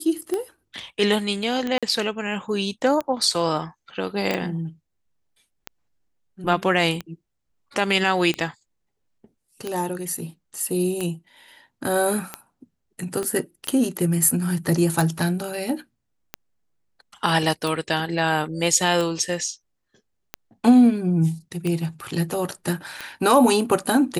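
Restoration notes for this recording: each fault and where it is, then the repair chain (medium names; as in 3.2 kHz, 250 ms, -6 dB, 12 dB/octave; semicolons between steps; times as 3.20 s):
tick 45 rpm -13 dBFS
1.78–1.83 s: dropout 46 ms
4.31 s: pop -11 dBFS
13.23 s: pop -16 dBFS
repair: de-click; interpolate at 1.78 s, 46 ms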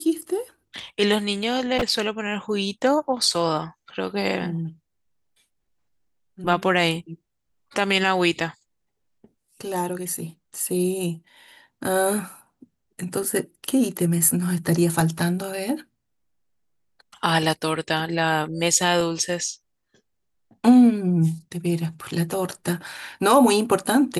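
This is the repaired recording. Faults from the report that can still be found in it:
13.23 s: pop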